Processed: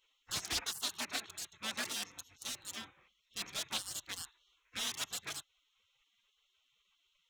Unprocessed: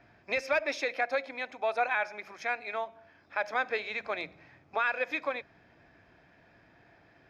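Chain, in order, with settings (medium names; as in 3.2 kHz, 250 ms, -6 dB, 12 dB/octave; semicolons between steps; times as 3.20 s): local Wiener filter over 9 samples; spectral gate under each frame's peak -25 dB weak; tone controls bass +4 dB, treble +12 dB; loudspeaker Doppler distortion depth 0.25 ms; trim +7 dB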